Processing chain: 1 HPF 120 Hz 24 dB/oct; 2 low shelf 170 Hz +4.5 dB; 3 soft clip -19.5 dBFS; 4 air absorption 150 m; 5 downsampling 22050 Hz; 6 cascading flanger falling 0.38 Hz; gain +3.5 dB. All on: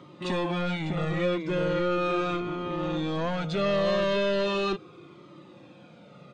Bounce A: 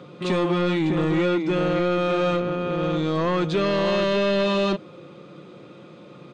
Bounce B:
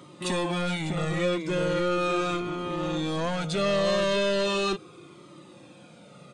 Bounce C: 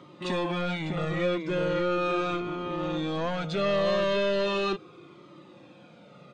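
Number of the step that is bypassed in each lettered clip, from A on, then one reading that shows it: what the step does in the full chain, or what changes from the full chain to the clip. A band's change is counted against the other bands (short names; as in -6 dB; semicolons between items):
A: 6, 250 Hz band +2.5 dB; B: 4, 4 kHz band +3.0 dB; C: 2, 125 Hz band -2.0 dB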